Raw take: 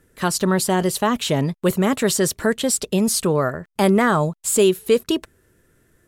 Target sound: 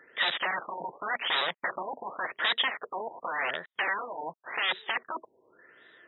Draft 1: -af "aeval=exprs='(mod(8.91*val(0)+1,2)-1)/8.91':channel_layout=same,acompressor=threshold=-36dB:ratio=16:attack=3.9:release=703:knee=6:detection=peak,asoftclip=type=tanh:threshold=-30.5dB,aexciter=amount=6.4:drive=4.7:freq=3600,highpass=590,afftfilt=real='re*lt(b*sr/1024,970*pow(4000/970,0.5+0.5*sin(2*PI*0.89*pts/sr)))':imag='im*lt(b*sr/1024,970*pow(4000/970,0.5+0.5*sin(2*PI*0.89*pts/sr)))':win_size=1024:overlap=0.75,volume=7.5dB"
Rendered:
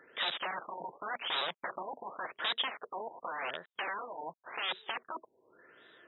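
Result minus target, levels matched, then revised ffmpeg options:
downward compressor: peak gain reduction +6.5 dB; 2,000 Hz band −2.5 dB
-af "aeval=exprs='(mod(8.91*val(0)+1,2)-1)/8.91':channel_layout=same,acompressor=threshold=-29dB:ratio=16:attack=3.9:release=703:knee=6:detection=peak,asoftclip=type=tanh:threshold=-30.5dB,aexciter=amount=6.4:drive=4.7:freq=3600,highpass=590,equalizer=frequency=1900:width=5.2:gain=8.5,afftfilt=real='re*lt(b*sr/1024,970*pow(4000/970,0.5+0.5*sin(2*PI*0.89*pts/sr)))':imag='im*lt(b*sr/1024,970*pow(4000/970,0.5+0.5*sin(2*PI*0.89*pts/sr)))':win_size=1024:overlap=0.75,volume=7.5dB"

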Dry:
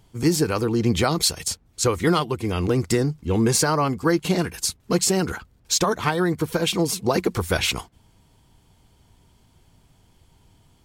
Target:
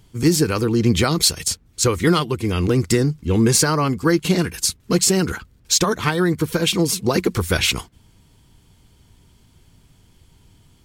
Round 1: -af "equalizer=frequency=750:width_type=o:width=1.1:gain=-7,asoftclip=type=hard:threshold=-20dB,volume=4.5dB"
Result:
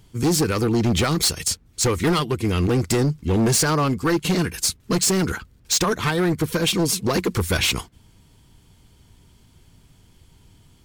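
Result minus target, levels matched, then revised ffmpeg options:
hard clipping: distortion +25 dB
-af "equalizer=frequency=750:width_type=o:width=1.1:gain=-7,asoftclip=type=hard:threshold=-11dB,volume=4.5dB"

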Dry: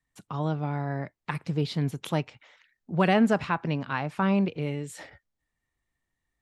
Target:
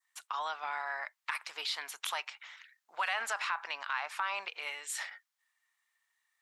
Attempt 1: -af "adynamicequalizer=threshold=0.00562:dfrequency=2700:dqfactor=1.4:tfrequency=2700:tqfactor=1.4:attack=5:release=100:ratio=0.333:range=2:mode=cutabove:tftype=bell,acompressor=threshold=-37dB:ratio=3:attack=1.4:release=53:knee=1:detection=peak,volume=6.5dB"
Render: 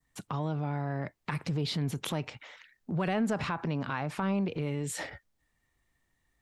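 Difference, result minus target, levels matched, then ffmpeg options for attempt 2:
1,000 Hz band −4.5 dB
-af "adynamicequalizer=threshold=0.00562:dfrequency=2700:dqfactor=1.4:tfrequency=2700:tqfactor=1.4:attack=5:release=100:ratio=0.333:range=2:mode=cutabove:tftype=bell,highpass=frequency=1000:width=0.5412,highpass=frequency=1000:width=1.3066,acompressor=threshold=-37dB:ratio=3:attack=1.4:release=53:knee=1:detection=peak,volume=6.5dB"

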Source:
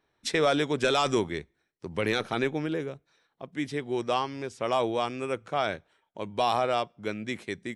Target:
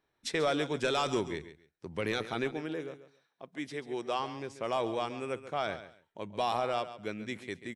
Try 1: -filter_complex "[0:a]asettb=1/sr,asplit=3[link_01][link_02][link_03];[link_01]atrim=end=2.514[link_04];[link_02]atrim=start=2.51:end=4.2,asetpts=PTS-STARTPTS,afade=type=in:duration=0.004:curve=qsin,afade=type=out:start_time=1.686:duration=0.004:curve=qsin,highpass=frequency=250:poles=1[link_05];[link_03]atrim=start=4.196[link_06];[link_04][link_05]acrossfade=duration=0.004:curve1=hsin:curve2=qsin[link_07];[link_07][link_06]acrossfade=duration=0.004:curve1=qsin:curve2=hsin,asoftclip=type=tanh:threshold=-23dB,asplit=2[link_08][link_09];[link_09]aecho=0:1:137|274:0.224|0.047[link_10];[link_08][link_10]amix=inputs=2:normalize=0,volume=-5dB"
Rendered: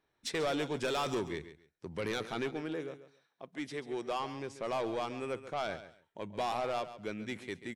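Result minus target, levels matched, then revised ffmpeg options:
soft clipping: distortion +17 dB
-filter_complex "[0:a]asettb=1/sr,asplit=3[link_01][link_02][link_03];[link_01]atrim=end=2.514[link_04];[link_02]atrim=start=2.51:end=4.2,asetpts=PTS-STARTPTS,afade=type=in:duration=0.004:curve=qsin,afade=type=out:start_time=1.686:duration=0.004:curve=qsin,highpass=frequency=250:poles=1[link_05];[link_03]atrim=start=4.196[link_06];[link_04][link_05]acrossfade=duration=0.004:curve1=hsin:curve2=qsin[link_07];[link_07][link_06]acrossfade=duration=0.004:curve1=qsin:curve2=hsin,asoftclip=type=tanh:threshold=-11.5dB,asplit=2[link_08][link_09];[link_09]aecho=0:1:137|274:0.224|0.047[link_10];[link_08][link_10]amix=inputs=2:normalize=0,volume=-5dB"

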